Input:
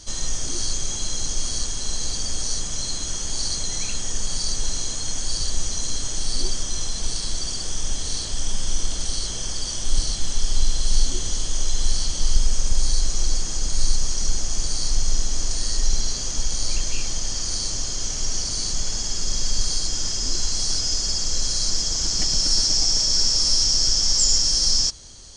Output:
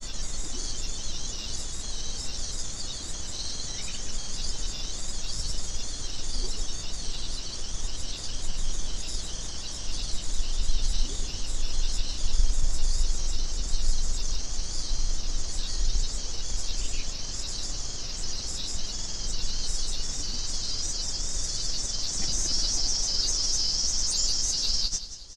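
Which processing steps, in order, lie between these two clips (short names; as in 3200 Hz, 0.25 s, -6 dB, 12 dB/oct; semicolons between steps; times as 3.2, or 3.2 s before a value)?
LPF 7400 Hz 12 dB/oct; grains, pitch spread up and down by 3 st; feedback echo 0.185 s, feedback 45%, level -12.5 dB; gain -5 dB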